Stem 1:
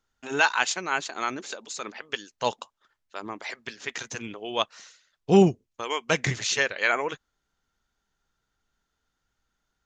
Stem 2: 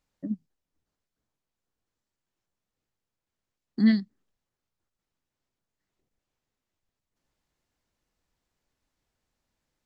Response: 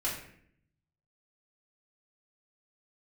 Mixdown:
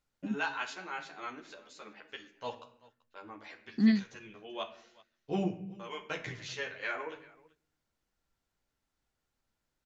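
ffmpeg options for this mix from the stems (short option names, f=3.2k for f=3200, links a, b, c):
-filter_complex "[0:a]lowpass=4.3k,asplit=2[a][b];[b]adelay=11.5,afreqshift=-2.6[c];[a][c]amix=inputs=2:normalize=1,volume=-12dB,asplit=3[d][e][f];[e]volume=-9dB[g];[f]volume=-20.5dB[h];[1:a]volume=-4dB[i];[2:a]atrim=start_sample=2205[j];[g][j]afir=irnorm=-1:irlink=0[k];[h]aecho=0:1:385:1[l];[d][i][k][l]amix=inputs=4:normalize=0"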